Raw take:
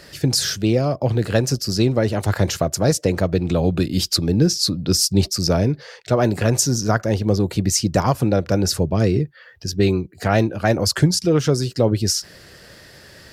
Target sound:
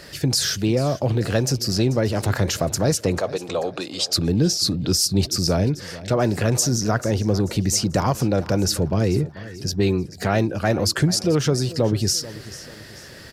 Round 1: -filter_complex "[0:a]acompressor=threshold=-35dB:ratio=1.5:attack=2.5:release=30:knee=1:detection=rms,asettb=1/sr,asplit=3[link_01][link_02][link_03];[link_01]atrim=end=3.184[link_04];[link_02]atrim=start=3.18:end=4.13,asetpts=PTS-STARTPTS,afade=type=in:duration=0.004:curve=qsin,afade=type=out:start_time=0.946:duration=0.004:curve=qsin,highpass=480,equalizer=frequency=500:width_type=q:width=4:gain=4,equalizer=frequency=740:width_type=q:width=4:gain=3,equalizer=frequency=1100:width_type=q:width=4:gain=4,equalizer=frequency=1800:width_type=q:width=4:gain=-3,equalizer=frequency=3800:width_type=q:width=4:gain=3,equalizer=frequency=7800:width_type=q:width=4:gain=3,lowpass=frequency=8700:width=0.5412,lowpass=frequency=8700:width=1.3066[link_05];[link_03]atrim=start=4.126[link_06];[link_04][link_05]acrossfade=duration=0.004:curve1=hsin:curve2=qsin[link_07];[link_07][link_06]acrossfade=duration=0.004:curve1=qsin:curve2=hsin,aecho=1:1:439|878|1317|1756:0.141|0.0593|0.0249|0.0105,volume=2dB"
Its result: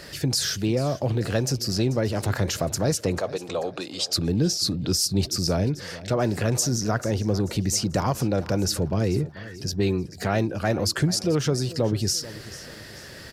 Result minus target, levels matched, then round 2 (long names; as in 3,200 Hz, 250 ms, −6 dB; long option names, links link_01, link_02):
downward compressor: peak gain reduction +3.5 dB
-filter_complex "[0:a]acompressor=threshold=-24.5dB:ratio=1.5:attack=2.5:release=30:knee=1:detection=rms,asettb=1/sr,asplit=3[link_01][link_02][link_03];[link_01]atrim=end=3.184[link_04];[link_02]atrim=start=3.18:end=4.13,asetpts=PTS-STARTPTS,afade=type=in:duration=0.004:curve=qsin,afade=type=out:start_time=0.946:duration=0.004:curve=qsin,highpass=480,equalizer=frequency=500:width_type=q:width=4:gain=4,equalizer=frequency=740:width_type=q:width=4:gain=3,equalizer=frequency=1100:width_type=q:width=4:gain=4,equalizer=frequency=1800:width_type=q:width=4:gain=-3,equalizer=frequency=3800:width_type=q:width=4:gain=3,equalizer=frequency=7800:width_type=q:width=4:gain=3,lowpass=frequency=8700:width=0.5412,lowpass=frequency=8700:width=1.3066[link_05];[link_03]atrim=start=4.126[link_06];[link_04][link_05]acrossfade=duration=0.004:curve1=hsin:curve2=qsin[link_07];[link_07][link_06]acrossfade=duration=0.004:curve1=qsin:curve2=hsin,aecho=1:1:439|878|1317|1756:0.141|0.0593|0.0249|0.0105,volume=2dB"